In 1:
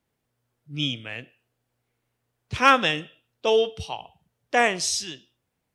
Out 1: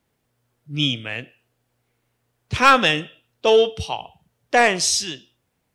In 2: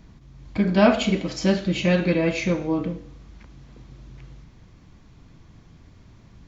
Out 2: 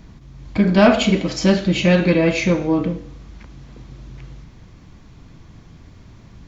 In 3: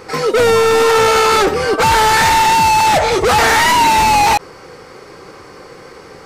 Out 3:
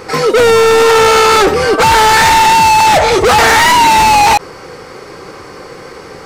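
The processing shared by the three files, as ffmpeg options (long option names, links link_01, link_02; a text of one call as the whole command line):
ffmpeg -i in.wav -af "acontrast=82,volume=-1dB" out.wav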